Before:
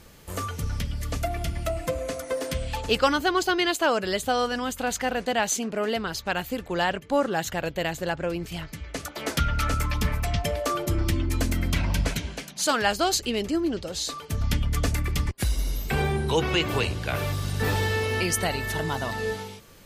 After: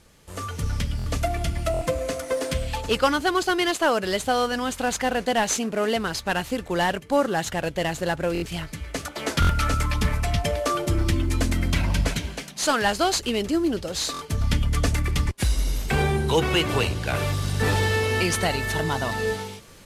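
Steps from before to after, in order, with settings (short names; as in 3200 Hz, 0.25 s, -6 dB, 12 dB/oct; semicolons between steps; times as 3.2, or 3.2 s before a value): CVSD 64 kbps; AGC gain up to 9 dB; stuck buffer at 0.97/1.72/8.33/9.4/14.12, samples 1024, times 3; gain -5.5 dB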